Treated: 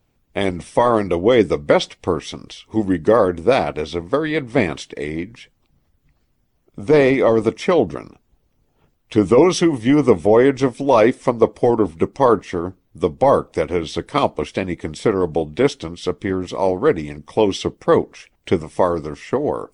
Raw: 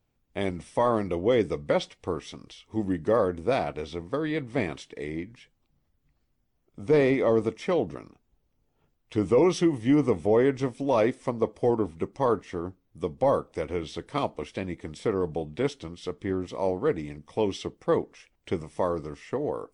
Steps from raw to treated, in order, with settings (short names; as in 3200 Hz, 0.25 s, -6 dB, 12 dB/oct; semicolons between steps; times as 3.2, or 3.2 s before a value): harmonic-percussive split percussive +6 dB; gain +6 dB